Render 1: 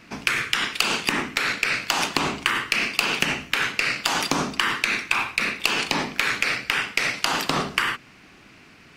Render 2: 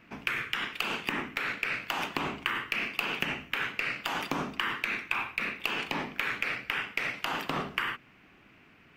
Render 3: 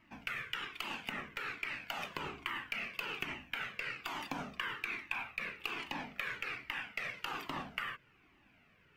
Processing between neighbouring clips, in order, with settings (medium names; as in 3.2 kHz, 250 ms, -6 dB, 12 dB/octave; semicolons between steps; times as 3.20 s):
high-order bell 6.5 kHz -11 dB; trim -8 dB
Shepard-style flanger falling 1.2 Hz; trim -4 dB